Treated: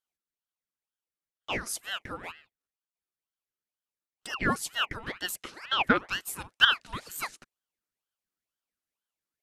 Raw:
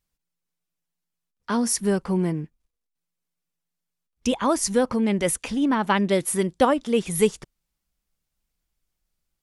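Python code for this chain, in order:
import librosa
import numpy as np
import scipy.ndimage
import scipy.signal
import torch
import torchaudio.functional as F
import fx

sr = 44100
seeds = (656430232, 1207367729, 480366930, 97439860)

y = fx.highpass_res(x, sr, hz=780.0, q=4.9)
y = fx.cheby_harmonics(y, sr, harmonics=(3,), levels_db=(-22,), full_scale_db=1.0)
y = fx.ring_lfo(y, sr, carrier_hz=1400.0, swing_pct=70, hz=2.1)
y = F.gain(torch.from_numpy(y), -5.0).numpy()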